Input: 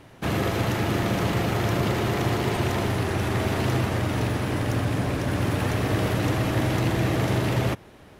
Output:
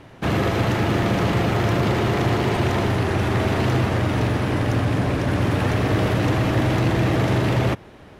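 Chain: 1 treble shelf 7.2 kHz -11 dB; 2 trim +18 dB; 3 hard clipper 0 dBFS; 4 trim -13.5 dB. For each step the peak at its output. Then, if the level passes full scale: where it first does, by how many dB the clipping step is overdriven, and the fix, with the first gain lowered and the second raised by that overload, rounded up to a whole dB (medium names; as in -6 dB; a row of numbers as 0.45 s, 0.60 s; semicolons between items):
-11.5 dBFS, +6.5 dBFS, 0.0 dBFS, -13.5 dBFS; step 2, 6.5 dB; step 2 +11 dB, step 4 -6.5 dB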